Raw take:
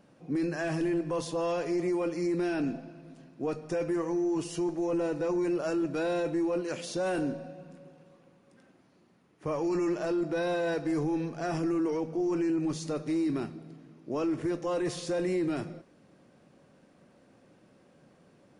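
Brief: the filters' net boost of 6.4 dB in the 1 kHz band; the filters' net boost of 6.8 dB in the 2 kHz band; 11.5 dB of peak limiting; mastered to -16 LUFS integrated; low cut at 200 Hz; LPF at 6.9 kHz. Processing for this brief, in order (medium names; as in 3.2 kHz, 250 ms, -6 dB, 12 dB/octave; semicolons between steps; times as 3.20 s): high-pass 200 Hz; low-pass 6.9 kHz; peaking EQ 1 kHz +7 dB; peaking EQ 2 kHz +6.5 dB; trim +19.5 dB; peak limiter -8 dBFS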